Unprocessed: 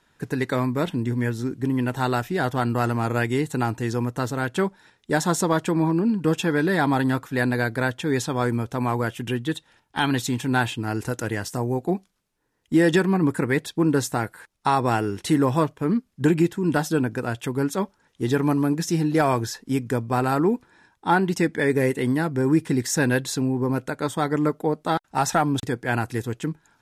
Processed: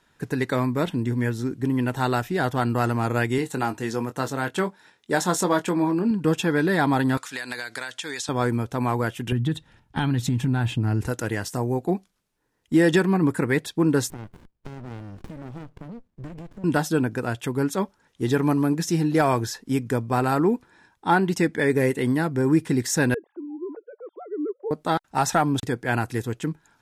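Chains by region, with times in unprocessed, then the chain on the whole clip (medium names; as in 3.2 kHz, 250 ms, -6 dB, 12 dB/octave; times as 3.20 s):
3.38–6.11 s: high-pass 200 Hz 6 dB/octave + doubling 22 ms -9.5 dB
7.17–8.29 s: frequency weighting ITU-R 468 + compression 12:1, threshold -27 dBFS
9.32–11.07 s: tone controls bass +14 dB, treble -4 dB + compression 5:1, threshold -19 dBFS
14.10–16.64 s: treble shelf 9.7 kHz -9 dB + compression 4:1, threshold -36 dBFS + sliding maximum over 65 samples
23.14–24.71 s: formants replaced by sine waves + ladder band-pass 460 Hz, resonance 45%
whole clip: none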